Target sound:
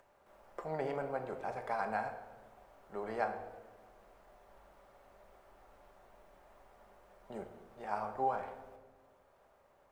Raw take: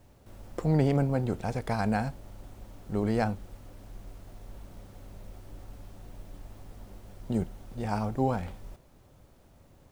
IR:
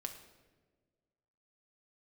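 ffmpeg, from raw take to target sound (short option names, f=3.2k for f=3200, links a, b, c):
-filter_complex "[0:a]acompressor=mode=upward:threshold=-50dB:ratio=2.5,acrossover=split=510 2000:gain=0.0708 1 0.2[a][b][c];[a][b][c]amix=inputs=3:normalize=0[d];[1:a]atrim=start_sample=2205[e];[d][e]afir=irnorm=-1:irlink=0,volume=1dB"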